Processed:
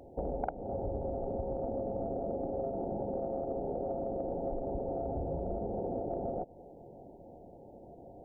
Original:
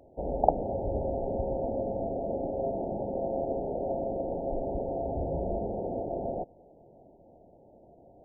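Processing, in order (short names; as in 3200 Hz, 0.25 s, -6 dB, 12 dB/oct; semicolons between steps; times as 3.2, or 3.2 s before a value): self-modulated delay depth 0.093 ms; notch 630 Hz, Q 12; compressor 10:1, threshold -37 dBFS, peak gain reduction 20.5 dB; gain +5 dB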